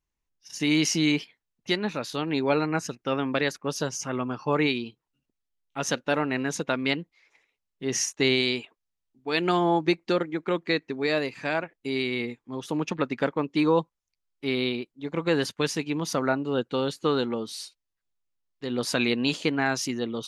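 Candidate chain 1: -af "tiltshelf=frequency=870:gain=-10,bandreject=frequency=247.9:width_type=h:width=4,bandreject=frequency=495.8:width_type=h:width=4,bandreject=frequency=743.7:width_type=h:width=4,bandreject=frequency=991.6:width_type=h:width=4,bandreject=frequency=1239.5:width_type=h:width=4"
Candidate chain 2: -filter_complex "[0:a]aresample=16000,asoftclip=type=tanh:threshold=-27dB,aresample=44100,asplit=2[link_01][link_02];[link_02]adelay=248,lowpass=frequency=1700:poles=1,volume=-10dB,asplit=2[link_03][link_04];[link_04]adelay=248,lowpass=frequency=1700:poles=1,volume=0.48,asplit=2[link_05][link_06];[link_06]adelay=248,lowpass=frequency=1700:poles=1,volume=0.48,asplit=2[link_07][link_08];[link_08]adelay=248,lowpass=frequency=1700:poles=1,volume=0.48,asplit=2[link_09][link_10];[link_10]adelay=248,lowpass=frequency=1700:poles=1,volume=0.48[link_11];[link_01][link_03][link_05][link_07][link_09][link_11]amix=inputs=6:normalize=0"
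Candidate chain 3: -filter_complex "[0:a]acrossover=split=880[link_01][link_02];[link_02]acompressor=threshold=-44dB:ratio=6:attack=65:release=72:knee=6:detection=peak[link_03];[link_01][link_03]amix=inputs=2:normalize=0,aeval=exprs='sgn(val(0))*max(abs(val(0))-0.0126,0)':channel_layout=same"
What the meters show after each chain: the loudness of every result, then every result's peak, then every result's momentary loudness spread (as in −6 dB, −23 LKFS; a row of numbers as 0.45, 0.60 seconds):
−23.5, −32.5, −30.5 LKFS; −4.0, −21.5, −12.5 dBFS; 13, 11, 10 LU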